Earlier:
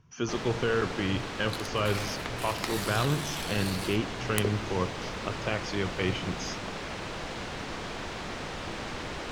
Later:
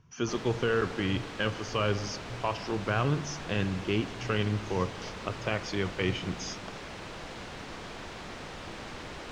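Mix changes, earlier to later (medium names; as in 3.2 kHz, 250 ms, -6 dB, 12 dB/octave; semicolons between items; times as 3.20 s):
first sound -5.0 dB; second sound: muted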